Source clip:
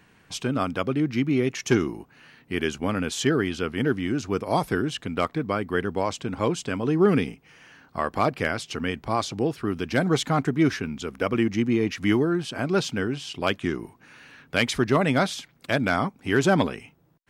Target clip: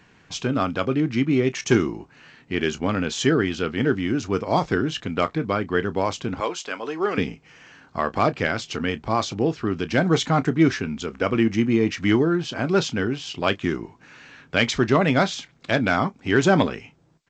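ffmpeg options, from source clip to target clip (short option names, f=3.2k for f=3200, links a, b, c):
-filter_complex "[0:a]asettb=1/sr,asplit=3[a][b][c];[a]atrim=end=6.404[d];[b]atrim=start=6.4:end=7.18,asetpts=PTS-STARTPTS,afade=t=in:d=0.004:c=qsin,afade=t=out:st=0.776:d=0.004:c=qsin,highpass=570[e];[c]atrim=start=7.176[f];[d][e]acrossfade=d=0.004:c1=hsin:c2=qsin[g];[g][f]acrossfade=d=0.004:c1=qsin:c2=hsin,aecho=1:1:18|31:0.158|0.141,volume=2.5dB" -ar 16000 -c:a g722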